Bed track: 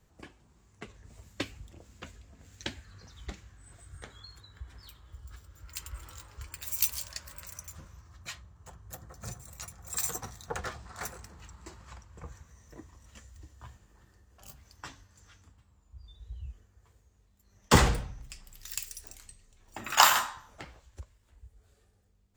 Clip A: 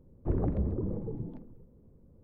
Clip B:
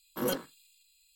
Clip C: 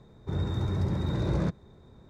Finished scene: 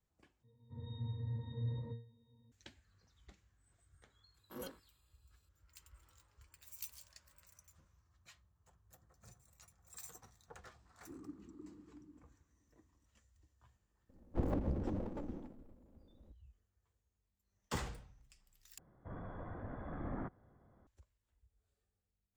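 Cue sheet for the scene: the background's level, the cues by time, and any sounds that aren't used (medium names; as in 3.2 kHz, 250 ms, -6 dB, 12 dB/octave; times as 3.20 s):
bed track -19.5 dB
0.43 s: replace with C -1 dB + pitch-class resonator A#, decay 0.4 s
4.34 s: add B -16.5 dB
10.81 s: add A -10 dB + two resonant band-passes 600 Hz, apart 2 oct
14.09 s: add A -4 dB + comb filter that takes the minimum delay 3.6 ms
18.78 s: replace with C -5 dB + mistuned SSB -300 Hz 360–2200 Hz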